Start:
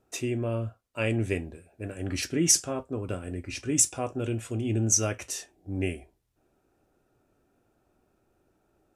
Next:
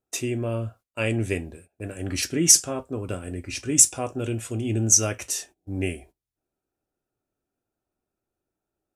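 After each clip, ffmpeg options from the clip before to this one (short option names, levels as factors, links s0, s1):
-af "agate=range=0.126:threshold=0.00316:ratio=16:detection=peak,highshelf=f=5200:g=7,volume=1.26"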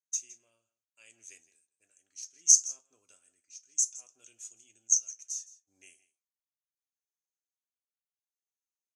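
-af "bandpass=f=6400:t=q:w=13:csg=0,tremolo=f=0.69:d=0.73,aecho=1:1:163:0.119,volume=2.11"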